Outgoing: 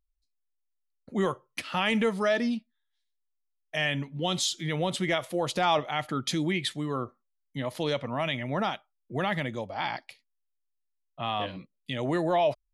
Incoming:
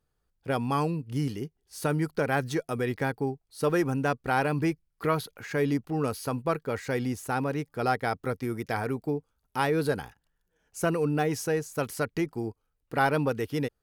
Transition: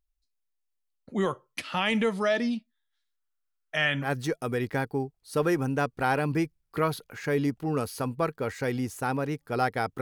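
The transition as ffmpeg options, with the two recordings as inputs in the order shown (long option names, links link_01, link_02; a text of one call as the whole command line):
ffmpeg -i cue0.wav -i cue1.wav -filter_complex "[0:a]asettb=1/sr,asplit=3[link_01][link_02][link_03];[link_01]atrim=end=2.924[link_04];[link_02]atrim=start=2.92:end=4.12,asetpts=PTS-STARTPTS,afade=type=in:duration=0.004:curve=qsin,afade=type=out:start_time=1.196:duration=0.004:curve=qsin,equalizer=frequency=1400:width=2.8:gain=11.5[link_05];[link_03]atrim=start=4.116[link_06];[link_04][link_05]acrossfade=duration=0.004:curve1=hsin:curve2=qsin[link_07];[link_07][link_06]acrossfade=duration=0.004:curve1=qsin:curve2=hsin,apad=whole_dur=10.01,atrim=end=10.01,atrim=end=4.12,asetpts=PTS-STARTPTS[link_08];[1:a]atrim=start=2.27:end=8.28,asetpts=PTS-STARTPTS[link_09];[link_08][link_09]acrossfade=duration=0.12:curve1=tri:curve2=tri" out.wav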